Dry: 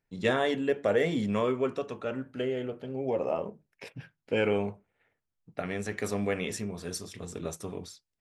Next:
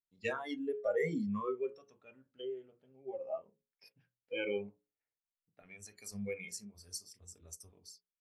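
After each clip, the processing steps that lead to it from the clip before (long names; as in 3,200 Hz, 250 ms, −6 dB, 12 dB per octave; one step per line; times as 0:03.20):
noise reduction from a noise print of the clip's start 22 dB
mains-hum notches 60/120/180/240/300/360/420/480/540 Hz
level −5 dB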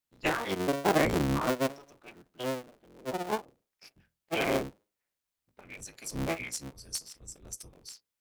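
sub-harmonics by changed cycles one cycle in 3, inverted
level +7.5 dB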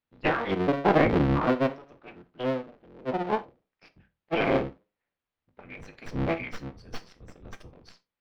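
stylus tracing distortion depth 0.13 ms
high-frequency loss of the air 330 metres
convolution reverb, pre-delay 3 ms, DRR 10.5 dB
level +5.5 dB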